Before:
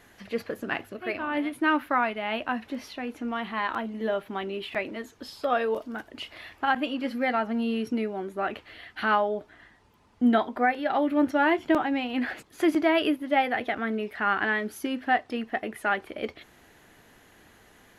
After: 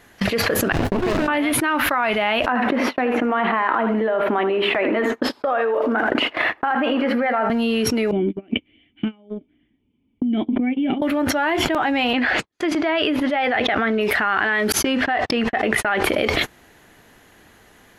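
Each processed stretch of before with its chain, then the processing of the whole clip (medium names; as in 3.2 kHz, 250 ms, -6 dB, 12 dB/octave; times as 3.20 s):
0.72–1.28 s: treble shelf 4.6 kHz -11.5 dB + compression 10:1, threshold -36 dBFS + sliding maximum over 33 samples
2.46–7.50 s: three-band isolator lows -18 dB, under 230 Hz, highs -21 dB, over 2.3 kHz + compression 2:1, threshold -31 dBFS + feedback delay 79 ms, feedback 24%, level -12 dB
8.11–11.02 s: compression 16:1, threshold -30 dBFS + cascade formant filter i
12.13–14.01 s: low-pass 5.4 kHz + gate -43 dBFS, range -32 dB
14.72–16.04 s: gate -45 dBFS, range -49 dB + distance through air 63 m
whole clip: gate -45 dBFS, range -35 dB; dynamic bell 250 Hz, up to -6 dB, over -39 dBFS, Q 0.9; level flattener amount 100%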